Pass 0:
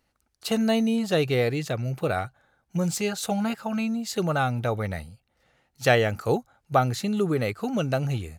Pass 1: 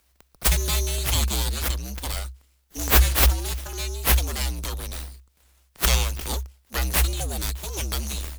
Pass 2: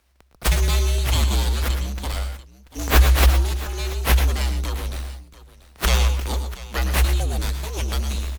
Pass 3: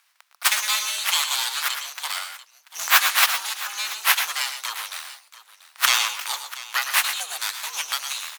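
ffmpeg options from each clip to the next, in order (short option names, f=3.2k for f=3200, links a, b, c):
-af "aexciter=amount=10.8:drive=6.7:freq=3.2k,aeval=exprs='abs(val(0))':c=same,afreqshift=-65,volume=-5dB"
-filter_complex "[0:a]aemphasis=mode=reproduction:type=cd,asplit=2[a][b];[b]aecho=0:1:108|122|687:0.282|0.266|0.141[c];[a][c]amix=inputs=2:normalize=0,volume=2.5dB"
-af "highpass=f=1k:w=0.5412,highpass=f=1k:w=1.3066,volume=6dB"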